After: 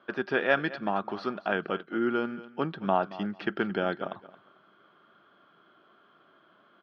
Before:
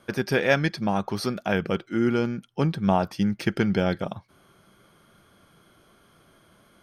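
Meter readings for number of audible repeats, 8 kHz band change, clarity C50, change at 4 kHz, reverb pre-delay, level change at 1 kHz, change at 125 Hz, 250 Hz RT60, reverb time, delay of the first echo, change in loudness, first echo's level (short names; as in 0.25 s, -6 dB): 2, n/a, none, -6.5 dB, none, -1.5 dB, -13.5 dB, none, none, 0.223 s, -5.0 dB, -17.0 dB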